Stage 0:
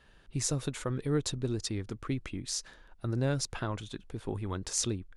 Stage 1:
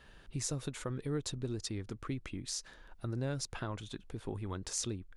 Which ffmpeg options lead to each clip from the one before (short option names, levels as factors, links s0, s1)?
-af "acompressor=threshold=0.00251:ratio=1.5,volume=1.41"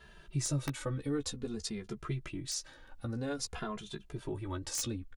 -filter_complex "[0:a]aeval=exprs='(mod(18.8*val(0)+1,2)-1)/18.8':c=same,asplit=2[s0][s1];[s1]adelay=14,volume=0.422[s2];[s0][s2]amix=inputs=2:normalize=0,asplit=2[s3][s4];[s4]adelay=2.5,afreqshift=-0.52[s5];[s3][s5]amix=inputs=2:normalize=1,volume=1.58"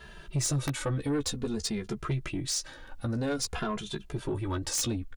-af "asoftclip=type=tanh:threshold=0.0282,volume=2.51"